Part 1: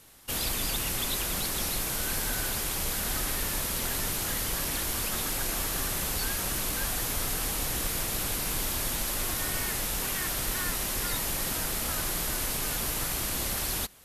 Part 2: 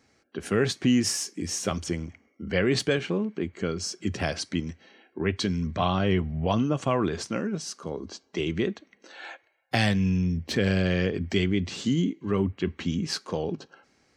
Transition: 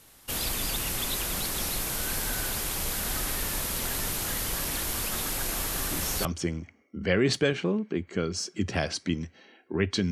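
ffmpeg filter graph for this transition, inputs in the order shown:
-filter_complex "[1:a]asplit=2[s0][s1];[0:a]apad=whole_dur=10.11,atrim=end=10.11,atrim=end=6.252[s2];[s1]atrim=start=1.708:end=5.57[s3];[s0]atrim=start=1.27:end=1.71,asetpts=PTS-STARTPTS,volume=0.501,afade=t=in:d=0.004:c=hsin,afade=t=out:st=0.436:d=0.004:c=hsin,adelay=256221S[s4];[s2][s3]acrossfade=d=0.004:c1=hsin:c2=hsin[s5];[s5][s4]amix=inputs=2:normalize=0"

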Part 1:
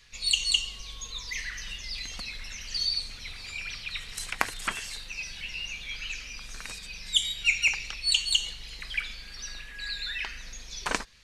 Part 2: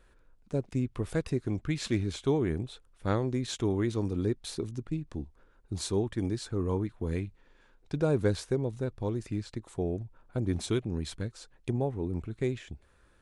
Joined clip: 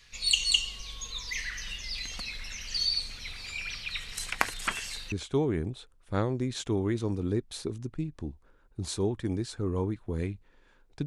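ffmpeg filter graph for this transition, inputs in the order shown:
-filter_complex "[0:a]apad=whole_dur=11.06,atrim=end=11.06,atrim=end=5.122[s0];[1:a]atrim=start=2.048:end=7.99[s1];[s0][s1]acrossfade=d=0.004:c1=hsin:c2=hsin"

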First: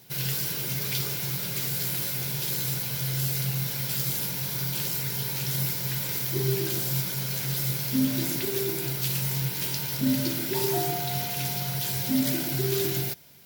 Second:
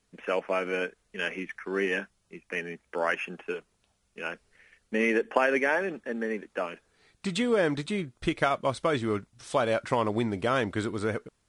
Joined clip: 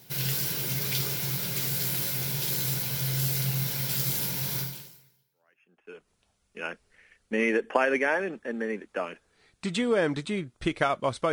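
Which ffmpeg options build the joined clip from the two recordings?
-filter_complex "[0:a]apad=whole_dur=11.32,atrim=end=11.32,atrim=end=6.09,asetpts=PTS-STARTPTS[s0];[1:a]atrim=start=2.2:end=8.93,asetpts=PTS-STARTPTS[s1];[s0][s1]acrossfade=d=1.5:c1=exp:c2=exp"

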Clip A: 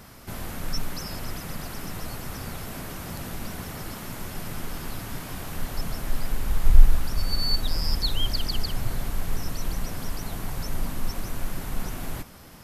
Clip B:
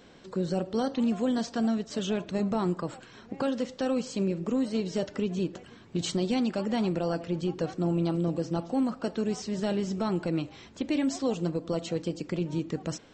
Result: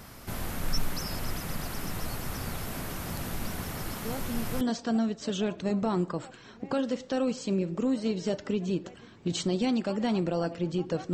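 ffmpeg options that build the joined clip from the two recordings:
-filter_complex "[1:a]asplit=2[s0][s1];[0:a]apad=whole_dur=11.13,atrim=end=11.13,atrim=end=4.612[s2];[s1]atrim=start=1.298:end=7.82[s3];[s0]atrim=start=0.74:end=1.3,asetpts=PTS-STARTPTS,volume=0.376,afade=t=in:d=0.004:c=hsin,afade=t=out:st=0.556:d=0.004:c=hsin,adelay=178605S[s4];[s2][s3]acrossfade=d=0.004:c1=hsin:c2=hsin[s5];[s5][s4]amix=inputs=2:normalize=0"

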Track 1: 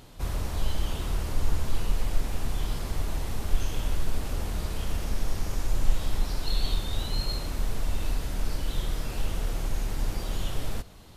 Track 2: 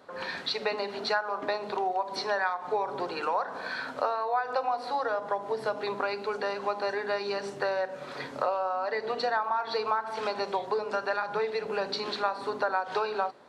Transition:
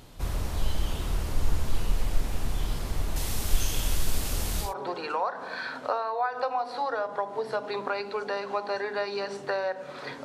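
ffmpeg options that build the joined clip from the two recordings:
-filter_complex "[0:a]asettb=1/sr,asplit=3[s0][s1][s2];[s0]atrim=end=3.164[s3];[s1]atrim=start=3.16:end=4.74,asetpts=PTS-STARTPTS,afade=t=in:d=0.004:c=qsin,afade=t=out:st=1.576:d=0.004:c=qsin,highshelf=f=3000:g=12[s4];[s2]atrim=start=4.736[s5];[s3][s4]acrossfade=d=0.004:c1=hsin:c2=qsin[s6];[s6][s5]acrossfade=d=0.004:c1=qsin:c2=hsin,apad=whole_dur=10.24,atrim=end=10.24,atrim=end=4.74,asetpts=PTS-STARTPTS[s7];[1:a]atrim=start=2.73:end=8.37,asetpts=PTS-STARTPTS[s8];[s7][s8]acrossfade=d=0.14:c1=tri:c2=tri"

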